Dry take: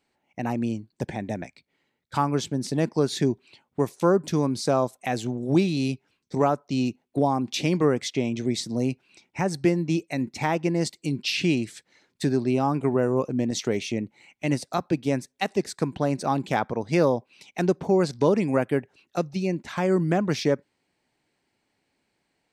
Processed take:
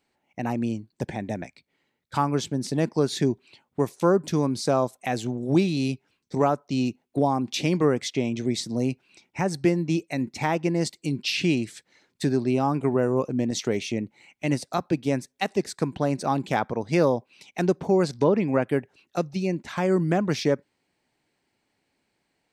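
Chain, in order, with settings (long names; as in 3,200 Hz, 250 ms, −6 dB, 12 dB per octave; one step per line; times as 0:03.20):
0:18.23–0:18.66: low-pass filter 2,400 Hz → 6,000 Hz 12 dB per octave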